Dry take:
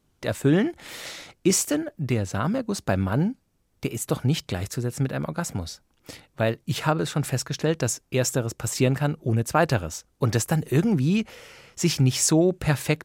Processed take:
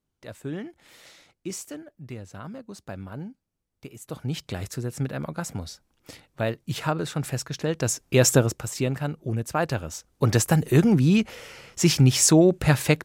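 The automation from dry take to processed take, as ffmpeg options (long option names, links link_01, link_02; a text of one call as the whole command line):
ffmpeg -i in.wav -af "volume=14.5dB,afade=type=in:start_time=4.02:duration=0.57:silence=0.298538,afade=type=in:start_time=7.75:duration=0.62:silence=0.316228,afade=type=out:start_time=8.37:duration=0.29:silence=0.266073,afade=type=in:start_time=9.76:duration=0.67:silence=0.421697" out.wav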